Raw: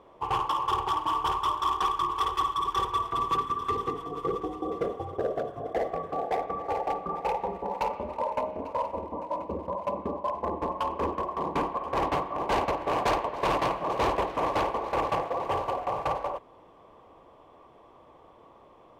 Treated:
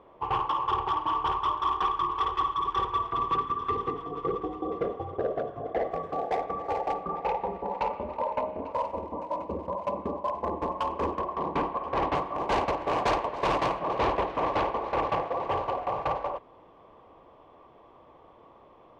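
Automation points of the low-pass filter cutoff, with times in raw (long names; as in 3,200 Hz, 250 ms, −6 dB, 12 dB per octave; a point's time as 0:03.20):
3,200 Hz
from 0:05.91 7,500 Hz
from 0:07.03 3,800 Hz
from 0:08.74 8,300 Hz
from 0:11.19 4,200 Hz
from 0:12.15 7,400 Hz
from 0:13.79 4,200 Hz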